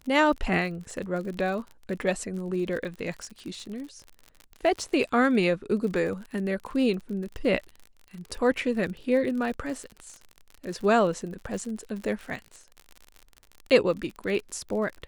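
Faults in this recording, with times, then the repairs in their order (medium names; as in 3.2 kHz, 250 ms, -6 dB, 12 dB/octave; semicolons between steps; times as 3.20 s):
crackle 48 per s -34 dBFS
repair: de-click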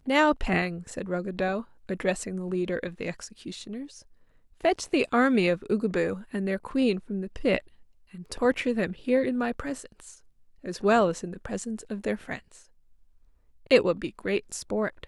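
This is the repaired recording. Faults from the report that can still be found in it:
nothing left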